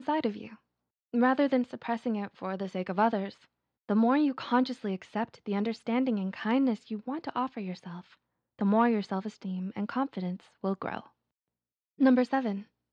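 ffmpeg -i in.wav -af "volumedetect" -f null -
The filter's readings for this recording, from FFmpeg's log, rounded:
mean_volume: -30.4 dB
max_volume: -12.6 dB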